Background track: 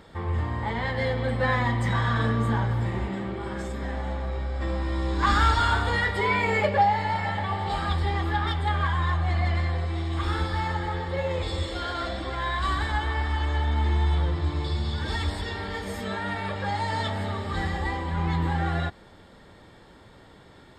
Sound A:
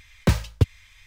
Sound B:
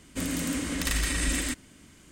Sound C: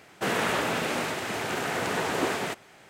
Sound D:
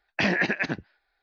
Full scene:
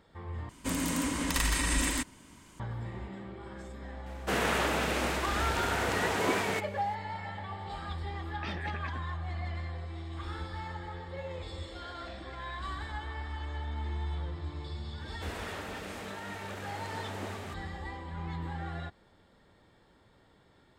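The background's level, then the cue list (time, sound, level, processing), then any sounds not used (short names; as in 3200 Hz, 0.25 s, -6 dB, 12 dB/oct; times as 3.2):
background track -12 dB
0.49 replace with B -1.5 dB + bell 960 Hz +12 dB 0.4 oct
4.06 add C -2.5 dB
8.24 add D -17 dB
11.89 add D -15 dB + compressor, threshold -38 dBFS
15 add C -14.5 dB
not used: A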